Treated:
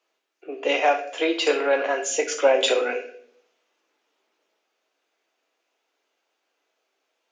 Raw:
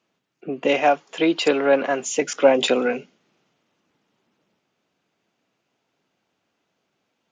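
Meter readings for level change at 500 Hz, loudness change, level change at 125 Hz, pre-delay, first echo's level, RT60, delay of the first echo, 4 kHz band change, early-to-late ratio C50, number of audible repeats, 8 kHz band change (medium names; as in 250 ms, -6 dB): -2.5 dB, -2.0 dB, under -25 dB, 5 ms, no echo, 0.65 s, no echo, +0.5 dB, 10.0 dB, no echo, +1.0 dB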